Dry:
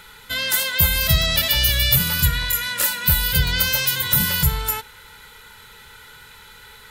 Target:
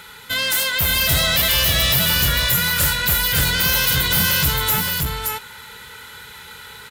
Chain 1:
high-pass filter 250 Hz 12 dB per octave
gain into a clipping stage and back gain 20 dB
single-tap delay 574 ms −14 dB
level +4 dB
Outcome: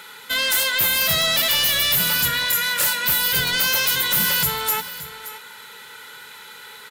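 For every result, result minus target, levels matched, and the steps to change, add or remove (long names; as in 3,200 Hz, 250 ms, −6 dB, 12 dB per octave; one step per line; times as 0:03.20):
125 Hz band −10.5 dB; echo-to-direct −11.5 dB
change: high-pass filter 69 Hz 12 dB per octave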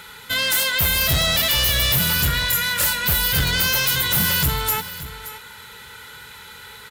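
echo-to-direct −11.5 dB
change: single-tap delay 574 ms −2.5 dB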